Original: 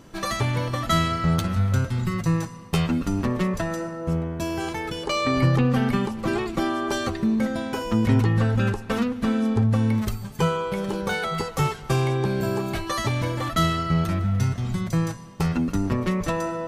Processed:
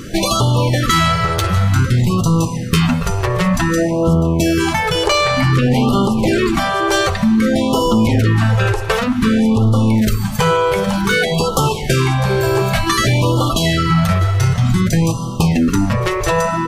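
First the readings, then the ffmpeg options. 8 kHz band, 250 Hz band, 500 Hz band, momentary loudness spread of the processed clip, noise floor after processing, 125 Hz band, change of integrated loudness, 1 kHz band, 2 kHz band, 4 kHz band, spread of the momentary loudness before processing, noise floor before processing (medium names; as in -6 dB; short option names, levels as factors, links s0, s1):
+13.0 dB, +8.5 dB, +10.0 dB, 3 LU, -22 dBFS, +8.5 dB, +9.0 dB, +10.0 dB, +11.0 dB, +12.0 dB, 7 LU, -38 dBFS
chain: -filter_complex "[0:a]apsyclip=11.2,acompressor=threshold=0.355:ratio=6,bandreject=f=50.98:t=h:w=4,bandreject=f=101.96:t=h:w=4,bandreject=f=152.94:t=h:w=4,bandreject=f=203.92:t=h:w=4,bandreject=f=254.9:t=h:w=4,bandreject=f=305.88:t=h:w=4,bandreject=f=356.86:t=h:w=4,bandreject=f=407.84:t=h:w=4,bandreject=f=458.82:t=h:w=4,bandreject=f=509.8:t=h:w=4,bandreject=f=560.78:t=h:w=4,bandreject=f=611.76:t=h:w=4,bandreject=f=662.74:t=h:w=4,bandreject=f=713.72:t=h:w=4,bandreject=f=764.7:t=h:w=4,bandreject=f=815.68:t=h:w=4,bandreject=f=866.66:t=h:w=4,bandreject=f=917.64:t=h:w=4,bandreject=f=968.62:t=h:w=4,bandreject=f=1019.6:t=h:w=4,bandreject=f=1070.58:t=h:w=4,bandreject=f=1121.56:t=h:w=4,bandreject=f=1172.54:t=h:w=4,bandreject=f=1223.52:t=h:w=4,bandreject=f=1274.5:t=h:w=4,bandreject=f=1325.48:t=h:w=4,asplit=2[s0][s1];[s1]aecho=0:1:651:0.141[s2];[s0][s2]amix=inputs=2:normalize=0,afftfilt=real='re*(1-between(b*sr/1024,220*pow(2000/220,0.5+0.5*sin(2*PI*0.54*pts/sr))/1.41,220*pow(2000/220,0.5+0.5*sin(2*PI*0.54*pts/sr))*1.41))':imag='im*(1-between(b*sr/1024,220*pow(2000/220,0.5+0.5*sin(2*PI*0.54*pts/sr))/1.41,220*pow(2000/220,0.5+0.5*sin(2*PI*0.54*pts/sr))*1.41))':win_size=1024:overlap=0.75,volume=0.794"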